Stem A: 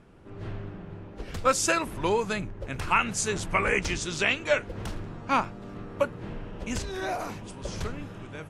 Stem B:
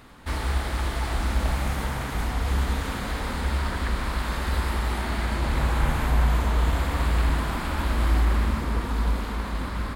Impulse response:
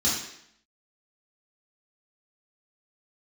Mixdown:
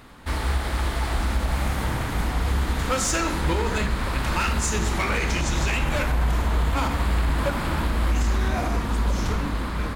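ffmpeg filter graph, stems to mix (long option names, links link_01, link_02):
-filter_complex "[0:a]asoftclip=type=hard:threshold=-21.5dB,adelay=1450,volume=2.5dB,asplit=2[link_01][link_02];[link_02]volume=-17dB[link_03];[1:a]volume=2dB[link_04];[2:a]atrim=start_sample=2205[link_05];[link_03][link_05]afir=irnorm=-1:irlink=0[link_06];[link_01][link_04][link_06]amix=inputs=3:normalize=0,alimiter=limit=-14dB:level=0:latency=1:release=88"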